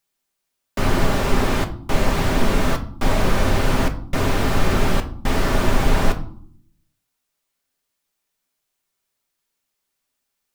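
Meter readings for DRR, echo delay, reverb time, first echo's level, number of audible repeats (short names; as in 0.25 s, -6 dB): 5.0 dB, none, 0.60 s, none, none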